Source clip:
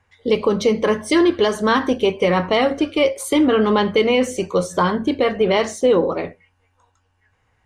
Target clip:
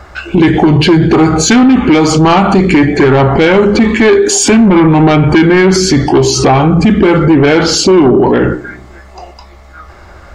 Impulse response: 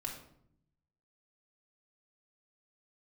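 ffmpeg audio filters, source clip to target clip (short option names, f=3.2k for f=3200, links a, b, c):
-filter_complex "[0:a]asplit=2[a][b];[1:a]atrim=start_sample=2205,asetrate=74970,aresample=44100[c];[b][c]afir=irnorm=-1:irlink=0,volume=-14dB[d];[a][d]amix=inputs=2:normalize=0,asetrate=32667,aresample=44100,acompressor=threshold=-33dB:ratio=1.5,aeval=exprs='0.224*sin(PI/2*1.58*val(0)/0.224)':c=same,alimiter=level_in=22.5dB:limit=-1dB:release=50:level=0:latency=1,volume=-1dB"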